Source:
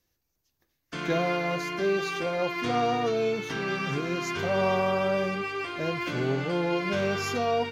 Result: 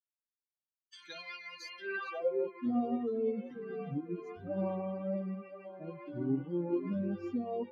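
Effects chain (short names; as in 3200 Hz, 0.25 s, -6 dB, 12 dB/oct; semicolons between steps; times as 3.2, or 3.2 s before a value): per-bin expansion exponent 3; delay with a stepping band-pass 0.513 s, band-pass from 380 Hz, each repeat 0.7 oct, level -8.5 dB; band-pass sweep 5000 Hz -> 250 Hz, 1.63–2.44; gain +6.5 dB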